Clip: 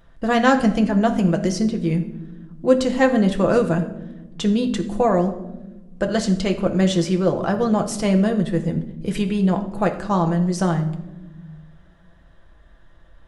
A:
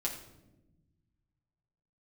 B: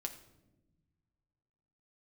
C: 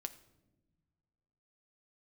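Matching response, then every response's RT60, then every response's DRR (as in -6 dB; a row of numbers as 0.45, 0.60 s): B; 1.0 s, not exponential, not exponential; -4.0, 3.5, 8.0 dB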